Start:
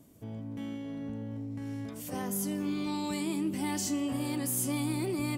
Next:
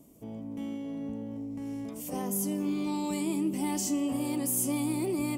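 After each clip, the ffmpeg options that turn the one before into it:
-af "equalizer=f=100:t=o:w=0.67:g=-12,equalizer=f=1.6k:t=o:w=0.67:g=-11,equalizer=f=4k:t=o:w=0.67:g=-7,volume=3dB"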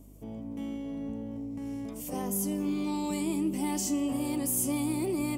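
-af "aeval=exprs='val(0)+0.00251*(sin(2*PI*50*n/s)+sin(2*PI*2*50*n/s)/2+sin(2*PI*3*50*n/s)/3+sin(2*PI*4*50*n/s)/4+sin(2*PI*5*50*n/s)/5)':c=same"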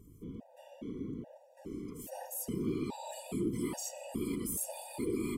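-af "afftfilt=real='hypot(re,im)*cos(2*PI*random(0))':imag='hypot(re,im)*sin(2*PI*random(1))':win_size=512:overlap=0.75,afftfilt=real='re*gt(sin(2*PI*1.2*pts/sr)*(1-2*mod(floor(b*sr/1024/490),2)),0)':imag='im*gt(sin(2*PI*1.2*pts/sr)*(1-2*mod(floor(b*sr/1024/490),2)),0)':win_size=1024:overlap=0.75,volume=2dB"

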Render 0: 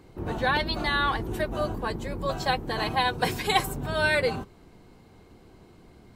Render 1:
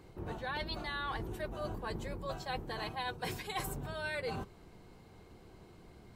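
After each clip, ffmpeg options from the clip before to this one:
-af "equalizer=f=260:w=3.3:g=-4.5,areverse,acompressor=threshold=-33dB:ratio=6,areverse,volume=-3dB"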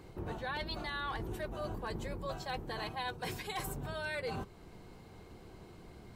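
-filter_complex "[0:a]asplit=2[a][b];[b]alimiter=level_in=12dB:limit=-24dB:level=0:latency=1:release=318,volume=-12dB,volume=3dB[c];[a][c]amix=inputs=2:normalize=0,aeval=exprs='0.0562*(abs(mod(val(0)/0.0562+3,4)-2)-1)':c=same,volume=-4.5dB"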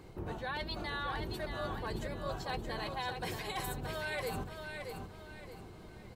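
-af "aecho=1:1:624|1248|1872|2496:0.501|0.18|0.065|0.0234"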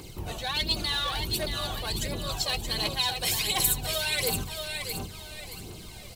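-filter_complex "[0:a]aphaser=in_gain=1:out_gain=1:delay=1.8:decay=0.5:speed=1.4:type=triangular,asplit=2[a][b];[b]asoftclip=type=hard:threshold=-34dB,volume=-6.5dB[c];[a][c]amix=inputs=2:normalize=0,aexciter=amount=5.7:drive=2.9:freq=2.4k"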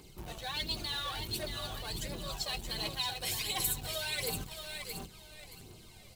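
-filter_complex "[0:a]flanger=delay=4.6:depth=4.9:regen=-55:speed=0.41:shape=triangular,asplit=2[a][b];[b]acrusher=bits=5:mix=0:aa=0.000001,volume=-8.5dB[c];[a][c]amix=inputs=2:normalize=0,volume=-6.5dB"

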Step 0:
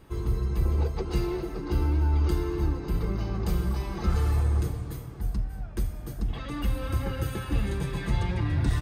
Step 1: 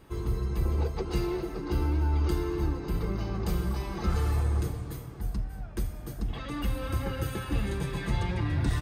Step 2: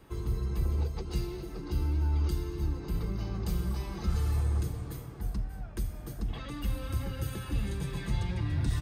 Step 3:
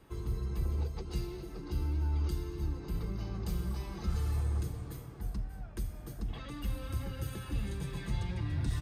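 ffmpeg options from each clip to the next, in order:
-af "lowshelf=f=140:g=-3.5"
-filter_complex "[0:a]acrossover=split=230|3000[a][b][c];[b]acompressor=threshold=-41dB:ratio=6[d];[a][d][c]amix=inputs=3:normalize=0,volume=-1.5dB"
-af "aresample=32000,aresample=44100,volume=-3.5dB"

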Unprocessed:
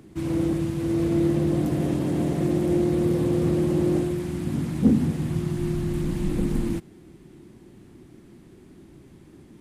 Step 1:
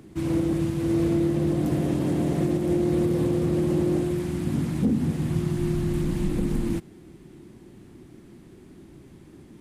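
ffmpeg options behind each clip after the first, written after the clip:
-af "alimiter=limit=-15.5dB:level=0:latency=1:release=218,volume=1dB"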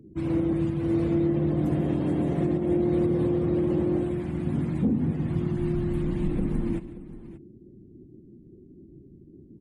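-af "afftdn=nr=35:nf=-47,aecho=1:1:145|581:0.15|0.158,volume=-1.5dB"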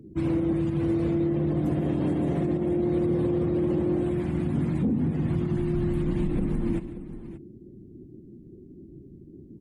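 -af "alimiter=limit=-21dB:level=0:latency=1:release=61,volume=3dB"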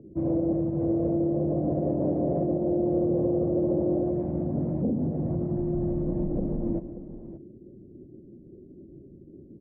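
-af "lowpass=f=600:t=q:w=4.9,volume=-3.5dB"

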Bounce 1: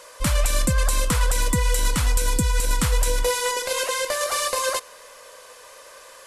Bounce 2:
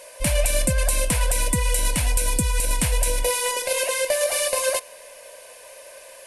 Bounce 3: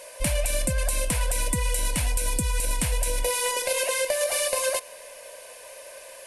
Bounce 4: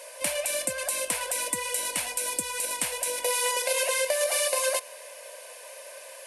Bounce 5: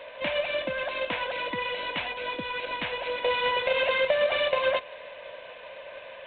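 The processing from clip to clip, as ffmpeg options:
-af "superequalizer=8b=2.24:10b=0.316:12b=1.78:16b=2.24,volume=-1.5dB"
-af "acompressor=threshold=-21dB:ratio=6"
-af "highpass=420"
-af "volume=3.5dB" -ar 8000 -c:a adpcm_g726 -b:a 24k

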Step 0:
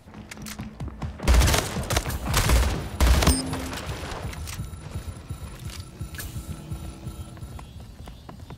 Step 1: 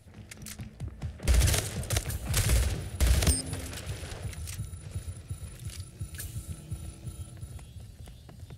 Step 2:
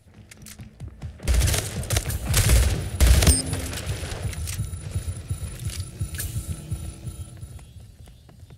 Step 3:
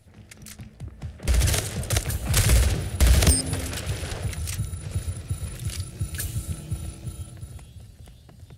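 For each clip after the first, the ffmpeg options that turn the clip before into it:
-af "equalizer=f=100:t=o:w=0.67:g=6,equalizer=f=250:t=o:w=0.67:g=-5,equalizer=f=1k:t=o:w=0.67:g=-11,equalizer=f=10k:t=o:w=0.67:g=7,volume=-6.5dB"
-af "dynaudnorm=f=210:g=17:m=9.5dB"
-af "asoftclip=type=tanh:threshold=-7.5dB"

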